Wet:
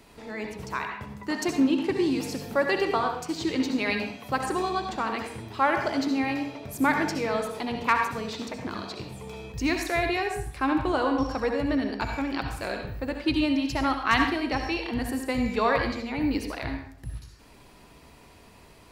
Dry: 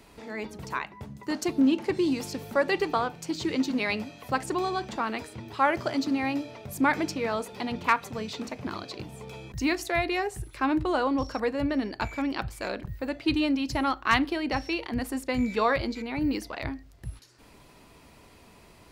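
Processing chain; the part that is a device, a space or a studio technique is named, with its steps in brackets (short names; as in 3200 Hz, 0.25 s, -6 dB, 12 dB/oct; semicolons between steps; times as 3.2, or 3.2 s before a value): bathroom (reverb RT60 0.60 s, pre-delay 60 ms, DRR 4 dB); 0.89–1.67 bell 1700 Hz +3.5 dB 2 oct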